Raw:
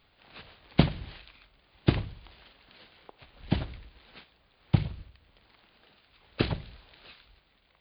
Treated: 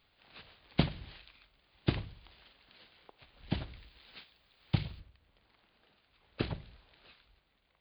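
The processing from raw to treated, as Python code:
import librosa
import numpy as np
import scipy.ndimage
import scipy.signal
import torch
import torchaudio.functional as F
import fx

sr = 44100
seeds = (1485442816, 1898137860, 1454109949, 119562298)

y = fx.high_shelf(x, sr, hz=2300.0, db=fx.steps((0.0, 4.5), (3.76, 11.5), (4.99, -2.0)))
y = y * 10.0 ** (-7.0 / 20.0)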